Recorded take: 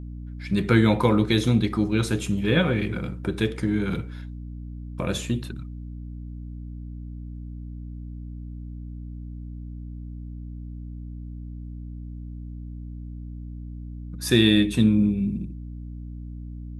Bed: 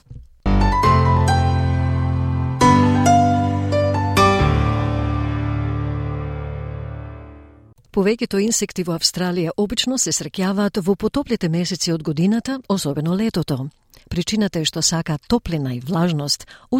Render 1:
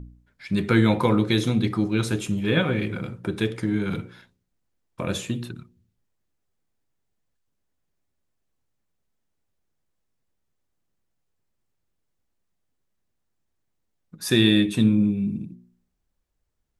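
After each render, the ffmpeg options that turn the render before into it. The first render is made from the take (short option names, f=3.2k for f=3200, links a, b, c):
-af "bandreject=f=60:t=h:w=4,bandreject=f=120:t=h:w=4,bandreject=f=180:t=h:w=4,bandreject=f=240:t=h:w=4,bandreject=f=300:t=h:w=4,bandreject=f=360:t=h:w=4,bandreject=f=420:t=h:w=4,bandreject=f=480:t=h:w=4,bandreject=f=540:t=h:w=4"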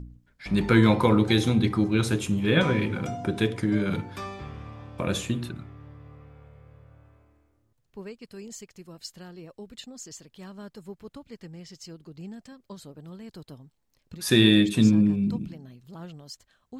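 -filter_complex "[1:a]volume=-23dB[a];[0:a][a]amix=inputs=2:normalize=0"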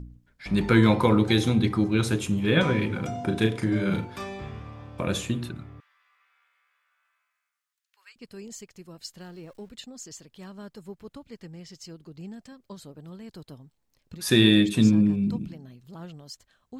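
-filter_complex "[0:a]asettb=1/sr,asplit=3[a][b][c];[a]atrim=end=3.114[d];[b]atrim=start=3.11:end=4.6,asetpts=PTS-STARTPTS,afade=t=in:d=0.004:c=qsin,afade=t=out:st=1.486:d=0.004:c=qsin,asplit=2[e][f];[f]adelay=36,volume=-5.5dB[g];[e][g]amix=inputs=2:normalize=0,atrim=end_sample=65709[h];[c]atrim=start=4.596[i];[d][h]acrossfade=d=0.004:c1=hsin:c2=qsin[j];[j][i]acrossfade=d=0.004:c1=qsin:c2=hsin,asettb=1/sr,asplit=3[k][l][m];[k]atrim=end=5.804[n];[l]atrim=start=5.8:end=8.16,asetpts=PTS-STARTPTS,afade=t=in:d=0.004:c=qsin,afade=t=out:st=2.356:d=0.004:c=qsin,highpass=f=1.4k:w=0.5412,highpass=f=1.4k:w=1.3066[o];[m]atrim=start=8.156[p];[n][o]acrossfade=d=0.004:c1=hsin:c2=qsin[q];[q][p]acrossfade=d=0.004:c1=qsin:c2=hsin,asettb=1/sr,asplit=3[r][s][t];[r]atrim=end=9.204[u];[s]atrim=start=9.2:end=9.69,asetpts=PTS-STARTPTS,afade=t=in:d=0.004:c=qsin,afade=t=out:st=0.486:d=0.004:c=qsin,aeval=exprs='val(0)+0.5*0.00178*sgn(val(0))':c=same[v];[t]atrim=start=9.686[w];[u][v]acrossfade=d=0.004:c1=hsin:c2=qsin[x];[x][w]acrossfade=d=0.004:c1=qsin:c2=hsin"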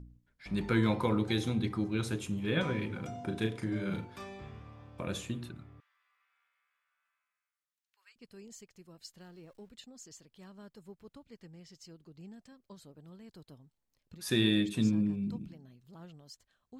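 -af "volume=-9.5dB"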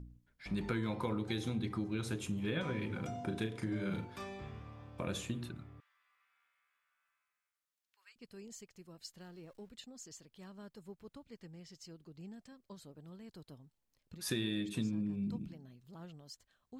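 -af "acompressor=threshold=-33dB:ratio=5"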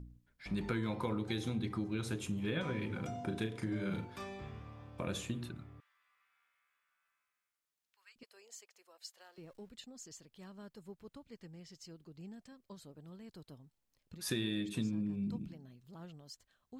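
-filter_complex "[0:a]asettb=1/sr,asplit=3[a][b][c];[a]atrim=end=8.234[d];[b]atrim=start=8.23:end=9.38,asetpts=PTS-STARTPTS,afade=t=in:d=0.004:c=qsin,afade=t=out:st=1.146:d=0.004:c=qsin,highpass=f=530:w=0.5412,highpass=f=530:w=1.3066[e];[c]atrim=start=9.376[f];[d][e]acrossfade=d=0.004:c1=hsin:c2=qsin[g];[g][f]acrossfade=d=0.004:c1=qsin:c2=hsin"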